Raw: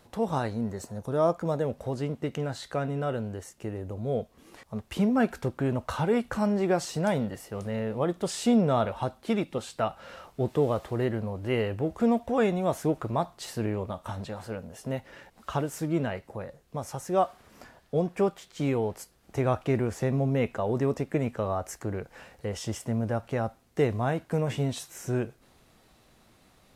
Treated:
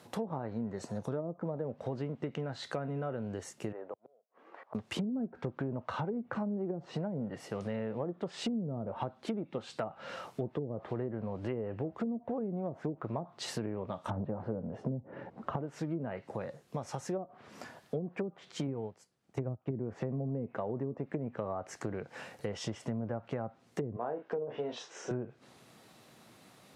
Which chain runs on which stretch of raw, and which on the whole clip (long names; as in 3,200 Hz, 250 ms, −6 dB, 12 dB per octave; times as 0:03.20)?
0:03.72–0:04.75: flat-topped band-pass 900 Hz, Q 0.76 + gate with flip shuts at −33 dBFS, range −38 dB
0:14.10–0:15.56: low-pass filter 1,900 Hz 6 dB per octave + tilt shelving filter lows +9.5 dB, about 1,400 Hz
0:18.67–0:19.71: low-pass filter 10,000 Hz + low-shelf EQ 180 Hz +7 dB + expander for the loud parts 2.5 to 1, over −32 dBFS
0:23.96–0:25.11: loudspeaker in its box 390–5,400 Hz, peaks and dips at 450 Hz +7 dB, 2,200 Hz −5 dB, 4,200 Hz −7 dB + double-tracking delay 34 ms −8 dB
whole clip: treble cut that deepens with the level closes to 340 Hz, closed at −20.5 dBFS; high-pass filter 110 Hz 24 dB per octave; downward compressor 5 to 1, threshold −36 dBFS; level +2.5 dB